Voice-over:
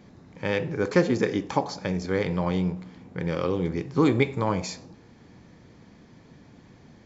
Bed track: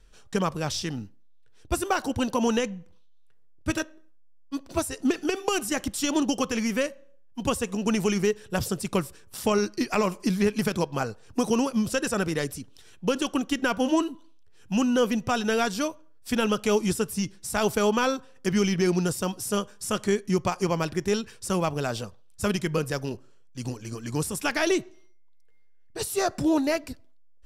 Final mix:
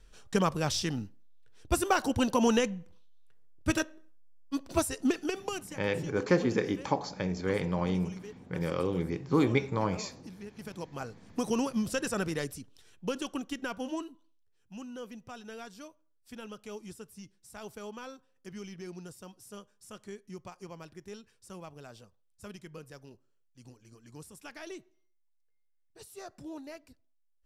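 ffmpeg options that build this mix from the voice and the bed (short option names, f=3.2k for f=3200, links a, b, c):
-filter_complex "[0:a]adelay=5350,volume=-4.5dB[a];[1:a]volume=16dB,afade=t=out:st=4.81:d=0.99:silence=0.0841395,afade=t=in:st=10.52:d=1.08:silence=0.141254,afade=t=out:st=12.28:d=2.36:silence=0.188365[b];[a][b]amix=inputs=2:normalize=0"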